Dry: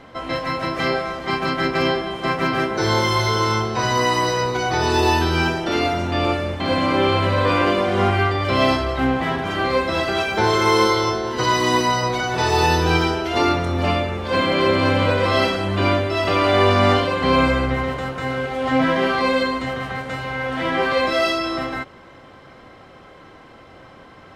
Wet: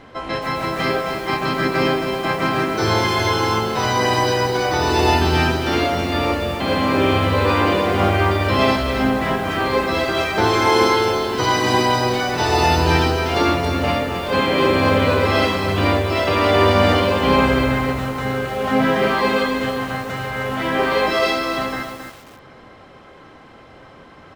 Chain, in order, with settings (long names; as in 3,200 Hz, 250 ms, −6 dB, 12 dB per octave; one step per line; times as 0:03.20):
pitch-shifted copies added −4 semitones −8 dB
feedback echo at a low word length 268 ms, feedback 35%, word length 6 bits, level −6.5 dB